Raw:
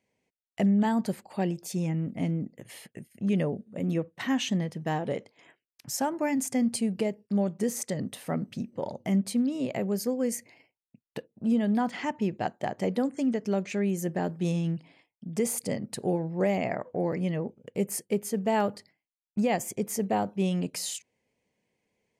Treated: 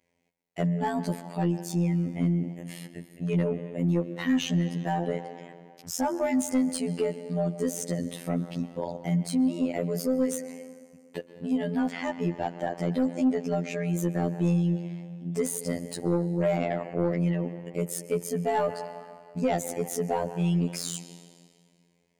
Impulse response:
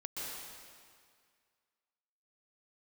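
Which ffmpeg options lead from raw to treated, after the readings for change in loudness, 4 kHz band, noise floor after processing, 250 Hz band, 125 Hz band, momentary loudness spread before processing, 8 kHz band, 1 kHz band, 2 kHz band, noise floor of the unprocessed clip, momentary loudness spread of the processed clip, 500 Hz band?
+1.0 dB, -0.5 dB, -63 dBFS, +0.5 dB, +3.5 dB, 9 LU, -0.5 dB, 0.0 dB, -0.5 dB, under -85 dBFS, 12 LU, +1.0 dB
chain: -filter_complex "[0:a]asplit=2[a][b];[1:a]atrim=start_sample=2205,highshelf=f=4.3k:g=-8[c];[b][c]afir=irnorm=-1:irlink=0,volume=-11dB[d];[a][d]amix=inputs=2:normalize=0,afftfilt=real='hypot(re,im)*cos(PI*b)':imag='0':win_size=2048:overlap=0.75,asoftclip=type=tanh:threshold=-20.5dB,volume=4.5dB"

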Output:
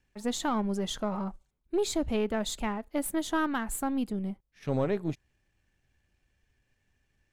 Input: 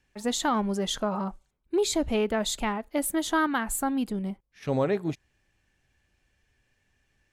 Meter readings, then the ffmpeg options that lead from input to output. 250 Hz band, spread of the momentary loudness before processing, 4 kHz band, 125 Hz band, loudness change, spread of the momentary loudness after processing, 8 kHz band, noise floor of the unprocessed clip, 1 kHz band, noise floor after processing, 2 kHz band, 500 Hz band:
-2.0 dB, 8 LU, -5.5 dB, -1.0 dB, -3.5 dB, 7 LU, -5.5 dB, -73 dBFS, -4.5 dB, -76 dBFS, -5.5 dB, -3.5 dB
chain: -af "aeval=exprs='if(lt(val(0),0),0.708*val(0),val(0))':c=same,lowshelf=f=350:g=4.5,volume=-4dB"

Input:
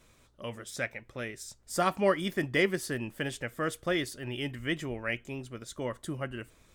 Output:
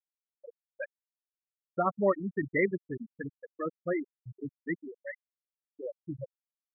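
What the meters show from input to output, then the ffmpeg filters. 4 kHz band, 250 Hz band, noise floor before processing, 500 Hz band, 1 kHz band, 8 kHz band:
under -40 dB, -2.0 dB, -63 dBFS, -1.0 dB, -2.0 dB, under -40 dB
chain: -af "afftfilt=real='re*gte(hypot(re,im),0.141)':imag='im*gte(hypot(re,im),0.141)':win_size=1024:overlap=0.75"

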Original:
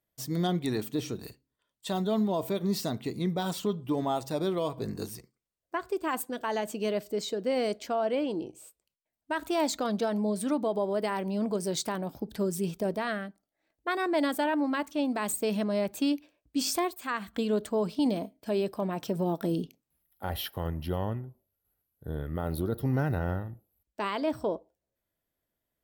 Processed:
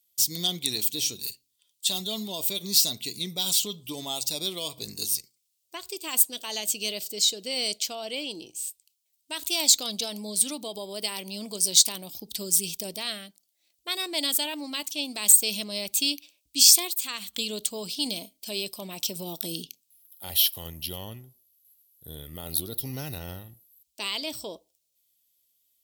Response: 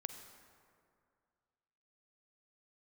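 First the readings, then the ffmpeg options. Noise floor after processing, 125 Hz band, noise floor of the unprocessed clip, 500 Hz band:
-75 dBFS, -8.5 dB, under -85 dBFS, -8.5 dB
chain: -af "aexciter=amount=14.8:drive=4.8:freq=2.5k,volume=-8.5dB"

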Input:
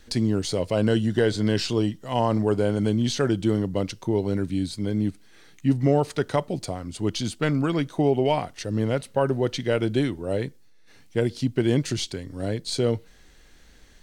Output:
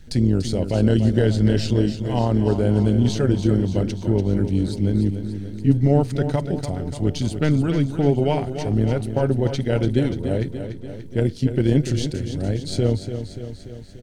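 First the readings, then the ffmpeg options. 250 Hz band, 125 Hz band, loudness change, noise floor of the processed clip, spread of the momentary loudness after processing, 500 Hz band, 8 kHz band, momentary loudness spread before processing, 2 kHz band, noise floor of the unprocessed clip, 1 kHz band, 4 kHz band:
+4.0 dB, +7.5 dB, +3.5 dB, -37 dBFS, 10 LU, +1.0 dB, -1.5 dB, 7 LU, -1.5 dB, -51 dBFS, -1.5 dB, -1.5 dB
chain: -af "lowshelf=f=240:g=11.5,bandreject=f=1.1k:w=5.1,tremolo=f=150:d=0.519,aecho=1:1:291|582|873|1164|1455|1746|2037:0.335|0.201|0.121|0.0724|0.0434|0.026|0.0156"

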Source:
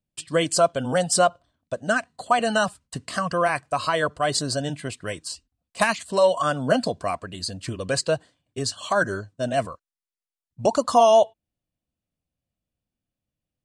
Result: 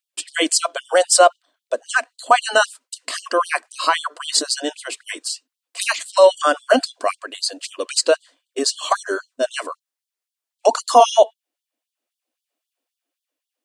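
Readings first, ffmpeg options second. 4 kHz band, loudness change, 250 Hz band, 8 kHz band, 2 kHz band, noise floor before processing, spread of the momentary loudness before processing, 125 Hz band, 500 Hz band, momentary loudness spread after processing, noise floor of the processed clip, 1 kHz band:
+7.5 dB, +4.5 dB, -1.5 dB, +7.5 dB, +4.5 dB, under -85 dBFS, 13 LU, under -30 dB, +3.5 dB, 15 LU, under -85 dBFS, +4.5 dB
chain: -af "apsyclip=10dB,dynaudnorm=f=130:g=17:m=3.5dB,afftfilt=real='re*gte(b*sr/1024,220*pow(3100/220,0.5+0.5*sin(2*PI*3.8*pts/sr)))':imag='im*gte(b*sr/1024,220*pow(3100/220,0.5+0.5*sin(2*PI*3.8*pts/sr)))':win_size=1024:overlap=0.75,volume=-1dB"

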